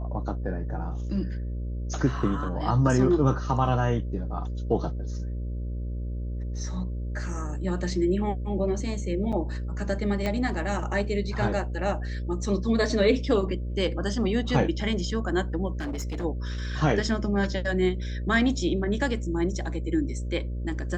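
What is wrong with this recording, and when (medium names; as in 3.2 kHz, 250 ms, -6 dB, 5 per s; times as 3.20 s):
buzz 60 Hz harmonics 10 -31 dBFS
9.32–9.33 s: dropout 6.4 ms
10.26 s: pop -15 dBFS
15.73–16.25 s: clipped -28 dBFS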